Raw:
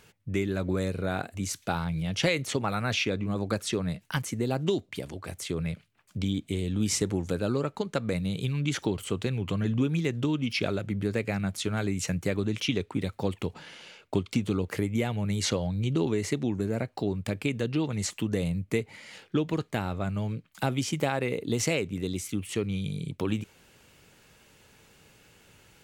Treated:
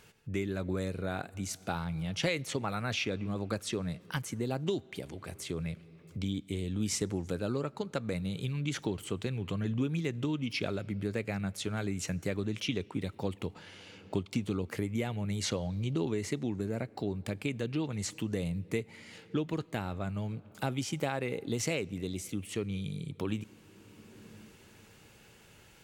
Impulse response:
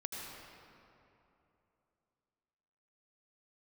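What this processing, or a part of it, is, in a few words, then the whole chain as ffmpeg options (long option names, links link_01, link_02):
ducked reverb: -filter_complex "[0:a]asplit=3[link_01][link_02][link_03];[1:a]atrim=start_sample=2205[link_04];[link_02][link_04]afir=irnorm=-1:irlink=0[link_05];[link_03]apad=whole_len=1139238[link_06];[link_05][link_06]sidechaincompress=threshold=-49dB:ratio=6:attack=10:release=559,volume=-0.5dB[link_07];[link_01][link_07]amix=inputs=2:normalize=0,volume=-5.5dB"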